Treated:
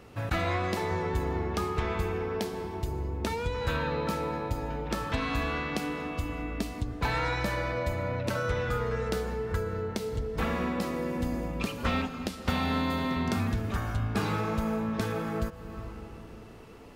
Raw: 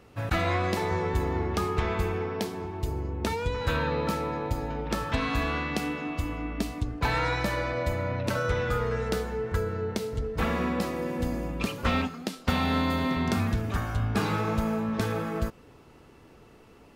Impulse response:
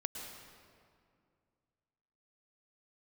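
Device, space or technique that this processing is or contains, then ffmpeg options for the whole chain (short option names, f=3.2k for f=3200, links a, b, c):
ducked reverb: -filter_complex "[0:a]asplit=3[a][b][c];[1:a]atrim=start_sample=2205[d];[b][d]afir=irnorm=-1:irlink=0[e];[c]apad=whole_len=747790[f];[e][f]sidechaincompress=threshold=-39dB:ratio=8:attack=8.5:release=306,volume=4dB[g];[a][g]amix=inputs=2:normalize=0,volume=-4dB"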